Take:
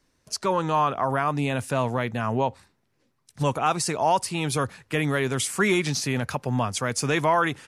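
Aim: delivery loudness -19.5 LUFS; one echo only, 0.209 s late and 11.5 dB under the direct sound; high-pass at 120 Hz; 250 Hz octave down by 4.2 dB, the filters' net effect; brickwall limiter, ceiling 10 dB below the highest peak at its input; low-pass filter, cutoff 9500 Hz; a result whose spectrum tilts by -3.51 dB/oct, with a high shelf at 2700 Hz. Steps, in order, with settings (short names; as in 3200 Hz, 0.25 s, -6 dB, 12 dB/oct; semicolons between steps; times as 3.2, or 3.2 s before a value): HPF 120 Hz; LPF 9500 Hz; bell 250 Hz -5.5 dB; high shelf 2700 Hz +4.5 dB; limiter -19.5 dBFS; echo 0.209 s -11.5 dB; gain +10.5 dB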